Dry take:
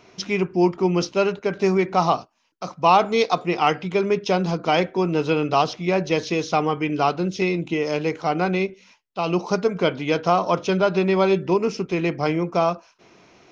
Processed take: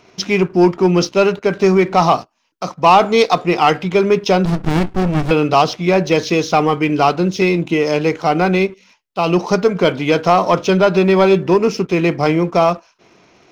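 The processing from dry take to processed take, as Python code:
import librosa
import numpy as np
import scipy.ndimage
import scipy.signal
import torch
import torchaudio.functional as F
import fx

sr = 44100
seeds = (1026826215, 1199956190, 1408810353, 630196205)

y = fx.leveller(x, sr, passes=1)
y = fx.running_max(y, sr, window=65, at=(4.45, 5.31))
y = y * librosa.db_to_amplitude(4.0)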